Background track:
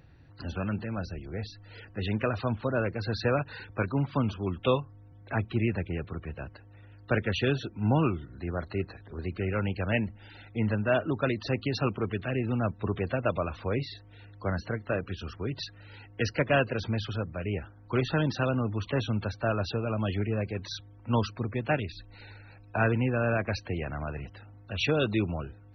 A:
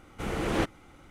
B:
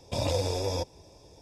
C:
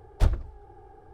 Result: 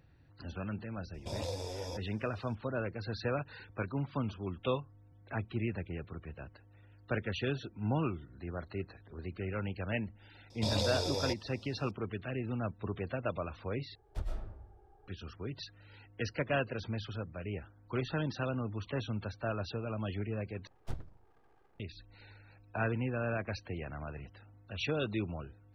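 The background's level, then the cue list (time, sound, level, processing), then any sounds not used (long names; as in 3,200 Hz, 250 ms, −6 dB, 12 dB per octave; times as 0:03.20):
background track −7.5 dB
0:01.14: mix in B −10.5 dB
0:10.50: mix in B −6 dB + parametric band 4,200 Hz +12.5 dB 0.52 octaves
0:13.95: overwrite with C −17 dB + comb and all-pass reverb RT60 0.9 s, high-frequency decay 0.45×, pre-delay 75 ms, DRR −1 dB
0:20.67: overwrite with C −15.5 dB + full-wave rectification
not used: A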